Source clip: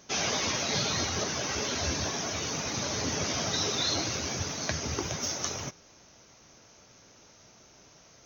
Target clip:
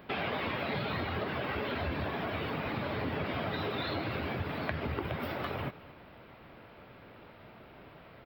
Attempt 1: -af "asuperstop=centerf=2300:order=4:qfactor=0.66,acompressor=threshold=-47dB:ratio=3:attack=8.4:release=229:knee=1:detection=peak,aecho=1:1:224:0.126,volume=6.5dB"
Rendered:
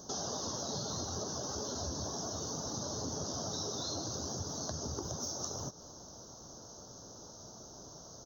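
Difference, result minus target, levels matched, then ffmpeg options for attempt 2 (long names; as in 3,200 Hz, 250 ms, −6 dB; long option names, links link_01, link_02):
2,000 Hz band −18.0 dB; downward compressor: peak gain reduction +5 dB
-af "asuperstop=centerf=6200:order=4:qfactor=0.66,acompressor=threshold=-40dB:ratio=3:attack=8.4:release=229:knee=1:detection=peak,aecho=1:1:224:0.126,volume=6.5dB"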